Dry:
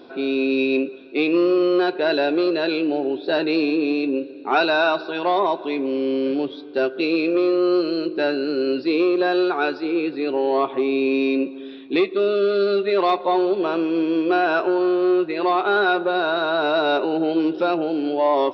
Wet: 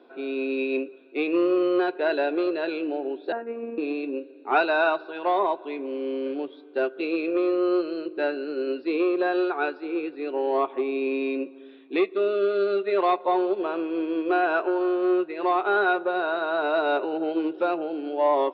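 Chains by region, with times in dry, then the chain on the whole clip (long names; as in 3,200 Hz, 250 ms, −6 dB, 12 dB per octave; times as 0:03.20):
0:03.32–0:03.78: low-pass filter 1,700 Hz 24 dB per octave + phases set to zero 232 Hz
whole clip: three-way crossover with the lows and the highs turned down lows −23 dB, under 240 Hz, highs −21 dB, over 3,400 Hz; expander for the loud parts 1.5 to 1, over −29 dBFS; level −1.5 dB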